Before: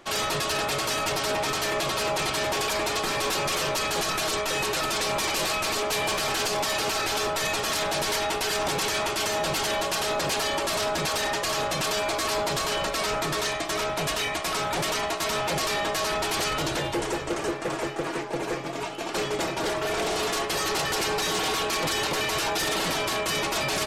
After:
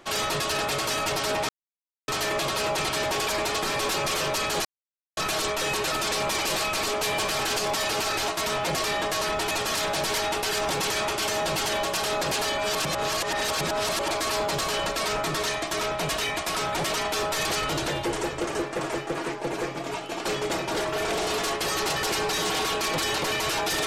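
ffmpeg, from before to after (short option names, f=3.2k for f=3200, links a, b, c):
-filter_complex "[0:a]asplit=9[a][b][c][d][e][f][g][h][i];[a]atrim=end=1.49,asetpts=PTS-STARTPTS,afade=t=out:st=1.486:d=0.004:c=hsin,apad=pad_dur=0.59[j];[b]atrim=start=1.49:end=4.06,asetpts=PTS-STARTPTS,afade=t=in:d=0.004:c=hsin,afade=t=out:st=2.566:d=0.004:c=hsin,apad=pad_dur=0.52[k];[c]atrim=start=4.06:end=7.172,asetpts=PTS-STARTPTS,afade=t=in:d=0.004:c=hsin[l];[d]atrim=start=15.108:end=16.342[m];[e]atrim=start=7.488:end=10.562[n];[f]atrim=start=10.558:end=12.082,asetpts=PTS-STARTPTS,areverse[o];[g]atrim=start=12.078:end=15.112[p];[h]atrim=start=7.168:end=7.492[q];[i]atrim=start=16.338[r];[j][k][l]concat=n=3:v=0:a=1[s];[s][m]acrossfade=d=0.004:c1=hsin:c2=hsin[t];[t][n]acrossfade=d=0.004:c1=hsin:c2=hsin[u];[u][o]acrossfade=d=0.004:c1=hsin:c2=hsin[v];[v][p]acrossfade=d=0.004:c1=hsin:c2=hsin[w];[w][q]acrossfade=d=0.004:c1=hsin:c2=hsin[x];[x][r]acrossfade=d=0.004:c1=hsin:c2=hsin"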